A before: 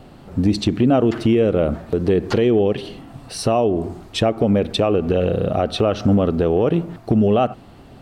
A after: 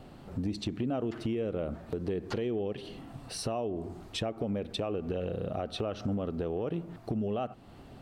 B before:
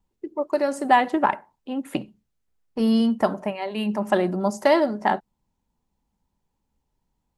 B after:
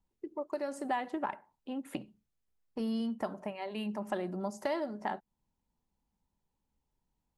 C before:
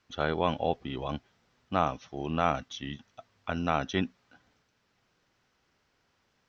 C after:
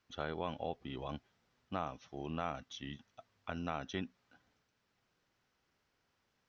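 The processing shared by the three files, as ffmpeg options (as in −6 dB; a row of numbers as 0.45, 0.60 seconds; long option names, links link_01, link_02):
-af "acompressor=threshold=-30dB:ratio=2,volume=-7dB"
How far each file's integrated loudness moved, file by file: −16.0, −14.0, −11.0 LU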